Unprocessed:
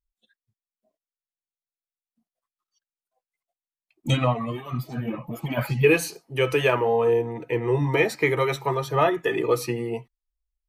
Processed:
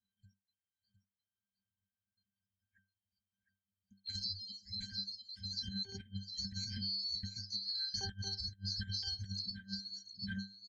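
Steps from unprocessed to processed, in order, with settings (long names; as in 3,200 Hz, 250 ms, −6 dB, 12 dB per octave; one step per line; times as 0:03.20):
neighbouring bands swapped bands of 4,000 Hz
Chebyshev band-stop filter 240–1,500 Hz, order 5
on a send: single-tap delay 709 ms −9 dB
on the sum: reverb reduction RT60 1 s
in parallel at −5.5 dB: wrap-around overflow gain 9 dB
on the sum: low-pass filter 6,900 Hz 24 dB per octave
low-shelf EQ 330 Hz +11 dB
resonances in every octave G, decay 0.29 s
compressor whose output falls as the input rises −57 dBFS, ratio −0.5
level +16.5 dB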